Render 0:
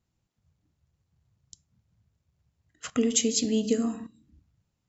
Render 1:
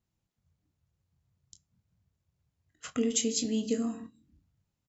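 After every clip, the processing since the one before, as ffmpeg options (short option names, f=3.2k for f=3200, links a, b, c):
-af "aecho=1:1:22|33:0.316|0.168,volume=-5dB"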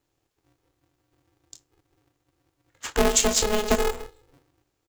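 -filter_complex "[0:a]lowshelf=f=64:g=-11,asplit=2[a][b];[b]adelay=25,volume=-11dB[c];[a][c]amix=inputs=2:normalize=0,aeval=exprs='val(0)*sgn(sin(2*PI*210*n/s))':c=same,volume=8.5dB"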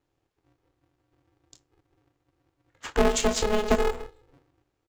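-af "lowpass=f=2.5k:p=1"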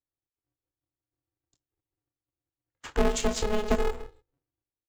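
-af "agate=range=-21dB:threshold=-51dB:ratio=16:detection=peak,lowshelf=f=190:g=5,volume=-4.5dB"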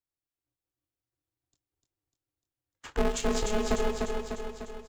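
-af "aecho=1:1:299|598|897|1196|1495|1794|2093|2392:0.631|0.36|0.205|0.117|0.0666|0.038|0.0216|0.0123,volume=-3dB"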